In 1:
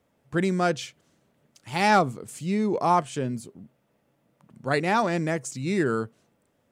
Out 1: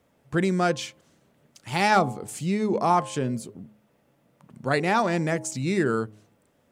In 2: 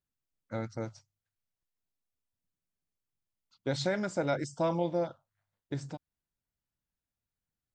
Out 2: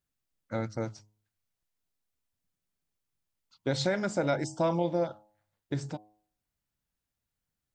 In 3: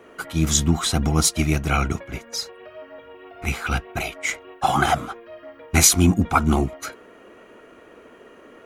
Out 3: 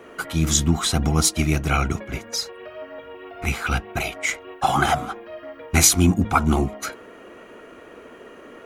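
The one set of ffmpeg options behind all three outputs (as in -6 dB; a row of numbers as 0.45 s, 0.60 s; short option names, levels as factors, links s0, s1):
-filter_complex "[0:a]bandreject=f=105.6:t=h:w=4,bandreject=f=211.2:t=h:w=4,bandreject=f=316.8:t=h:w=4,bandreject=f=422.4:t=h:w=4,bandreject=f=528:t=h:w=4,bandreject=f=633.6:t=h:w=4,bandreject=f=739.2:t=h:w=4,bandreject=f=844.8:t=h:w=4,bandreject=f=950.4:t=h:w=4,bandreject=f=1056:t=h:w=4,asplit=2[s0][s1];[s1]acompressor=threshold=0.0316:ratio=6,volume=0.891[s2];[s0][s2]amix=inputs=2:normalize=0,volume=0.841"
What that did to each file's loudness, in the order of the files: +0.5 LU, +2.0 LU, 0.0 LU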